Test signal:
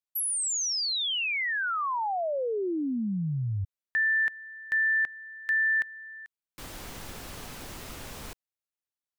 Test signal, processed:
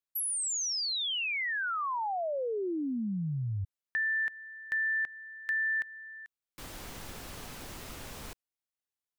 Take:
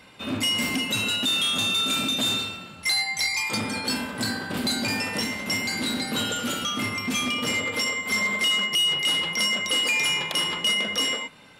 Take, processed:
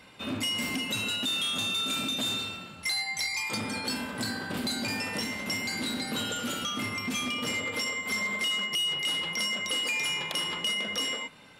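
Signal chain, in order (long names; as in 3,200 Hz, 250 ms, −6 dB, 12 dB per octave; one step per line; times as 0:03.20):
downward compressor 2 to 1, threshold −28 dBFS
level −2.5 dB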